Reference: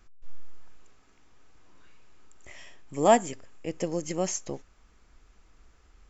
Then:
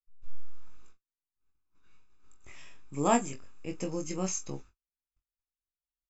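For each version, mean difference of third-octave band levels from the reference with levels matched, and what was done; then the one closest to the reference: 3.0 dB: gate -47 dBFS, range -46 dB; comb 0.8 ms, depth 49%; early reflections 21 ms -5 dB, 44 ms -15 dB; gain -5 dB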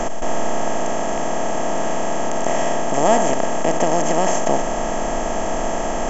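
11.5 dB: per-bin compression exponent 0.2; low shelf 67 Hz +10 dB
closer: first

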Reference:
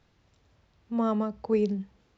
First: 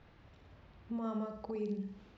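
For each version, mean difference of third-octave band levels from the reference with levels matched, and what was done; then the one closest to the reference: 4.5 dB: low-pass opened by the level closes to 2900 Hz, open at -24 dBFS; compressor 10:1, threshold -40 dBFS, peak gain reduction 20 dB; limiter -37.5 dBFS, peak gain reduction 7 dB; on a send: flutter echo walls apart 9.8 m, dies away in 0.59 s; on the sum: gain +5.5 dB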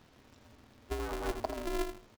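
19.5 dB: negative-ratio compressor -34 dBFS, ratio -1; feedback echo 82 ms, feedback 20%, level -9 dB; polarity switched at an audio rate 170 Hz; gain -2 dB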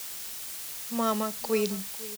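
14.5 dB: tilt +2.5 dB/oct; on a send: echo 0.5 s -18.5 dB; on the sum: requantised 8-bit, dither triangular; high shelf 2400 Hz +9 dB; gain +1.5 dB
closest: first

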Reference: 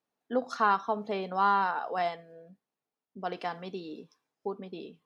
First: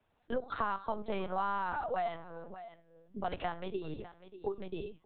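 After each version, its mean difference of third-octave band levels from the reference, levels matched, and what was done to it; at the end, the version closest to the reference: 6.0 dB: compressor 4:1, threshold -30 dBFS, peak gain reduction 9.5 dB; echo 0.594 s -19.5 dB; LPC vocoder at 8 kHz pitch kept; three-band squash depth 40%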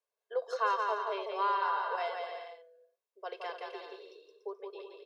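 9.0 dB: Chebyshev high-pass 390 Hz, order 5; comb 1.9 ms, depth 61%; dynamic EQ 2800 Hz, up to +4 dB, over -46 dBFS, Q 2.2; bouncing-ball echo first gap 0.17 s, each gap 0.7×, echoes 5; gain -6.5 dB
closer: first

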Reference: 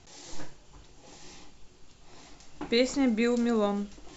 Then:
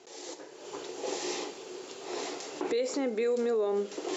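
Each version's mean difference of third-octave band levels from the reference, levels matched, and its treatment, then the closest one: 9.0 dB: compressor 16:1, threshold -39 dBFS, peak gain reduction 20.5 dB; resonant high-pass 410 Hz, resonance Q 4; AGC gain up to 13.5 dB; limiter -22.5 dBFS, peak gain reduction 10.5 dB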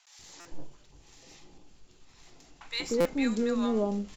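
4.5 dB: half-wave gain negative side -3 dB; vocal rider within 4 dB 2 s; bands offset in time highs, lows 0.19 s, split 890 Hz; stuck buffer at 0.4/3, samples 256, times 8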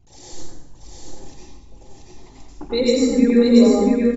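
6.5 dB: formant sharpening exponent 2; bell 160 Hz -2.5 dB; echo 0.684 s -3 dB; plate-style reverb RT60 0.91 s, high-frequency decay 0.85×, pre-delay 75 ms, DRR -6 dB; gain +3 dB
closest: second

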